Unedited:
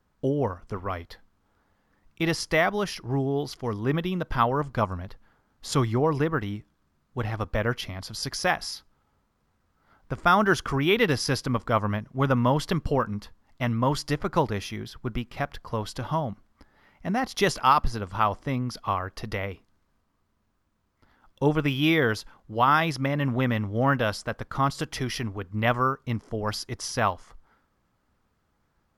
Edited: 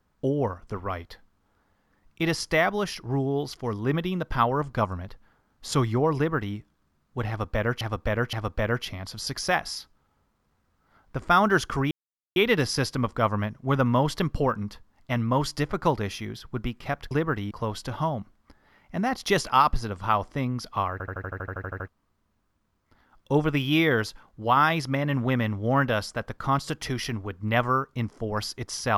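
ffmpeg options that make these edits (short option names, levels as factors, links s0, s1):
-filter_complex "[0:a]asplit=18[s0][s1][s2][s3][s4][s5][s6][s7][s8][s9][s10][s11][s12][s13][s14][s15][s16][s17];[s0]atrim=end=7.812[s18];[s1]atrim=start=7.288:end=7.812[s19];[s2]atrim=start=7.288:end=10.87,asetpts=PTS-STARTPTS,afade=t=out:st=3.578:d=0.004:c=hsin,apad=pad_dur=0.45[s20];[s3]atrim=start=10.87:end=15.622,asetpts=PTS-STARTPTS,afade=t=in:d=0.004:c=hsin[s21];[s4]atrim=start=6.158:end=6.562[s22];[s5]atrim=start=15.618:end=19.112[s23];[s6]atrim=start=19.028:end=19.112[s24];[s7]atrim=start=19.028:end=19.112[s25];[s8]atrim=start=19.028:end=19.112[s26];[s9]atrim=start=19.028:end=19.112[s27];[s10]atrim=start=19.028:end=19.112[s28];[s11]atrim=start=19.028:end=19.112[s29];[s12]atrim=start=19.028:end=19.112[s30];[s13]atrim=start=19.028:end=19.112[s31];[s14]atrim=start=19.028:end=19.112[s32];[s15]atrim=start=19.028:end=19.112[s33];[s16]atrim=start=19.028:end=19.112[s34];[s17]atrim=start=19.988[s35];[s18][s19]acrossfade=d=0.004:c1=hsin:c2=hsin[s36];[s20][s21]concat=n=2:v=0:a=1[s37];[s36][s37]acrossfade=d=0.004:c1=hsin:c2=hsin[s38];[s38][s22]acrossfade=d=0.004:c1=hsin:c2=hsin[s39];[s39][s23]acrossfade=d=0.004:c1=hsin:c2=hsin[s40];[s40][s24]acrossfade=d=0.004:c1=hsin:c2=hsin[s41];[s41][s25]acrossfade=d=0.004:c1=hsin:c2=hsin[s42];[s42][s26]acrossfade=d=0.004:c1=hsin:c2=hsin[s43];[s43][s27]acrossfade=d=0.004:c1=hsin:c2=hsin[s44];[s44][s28]acrossfade=d=0.004:c1=hsin:c2=hsin[s45];[s45][s29]acrossfade=d=0.004:c1=hsin:c2=hsin[s46];[s46][s30]acrossfade=d=0.004:c1=hsin:c2=hsin[s47];[s47][s31]acrossfade=d=0.004:c1=hsin:c2=hsin[s48];[s48][s32]acrossfade=d=0.004:c1=hsin:c2=hsin[s49];[s49][s33]acrossfade=d=0.004:c1=hsin:c2=hsin[s50];[s50][s34]acrossfade=d=0.004:c1=hsin:c2=hsin[s51];[s51][s35]acrossfade=d=0.004:c1=hsin:c2=hsin"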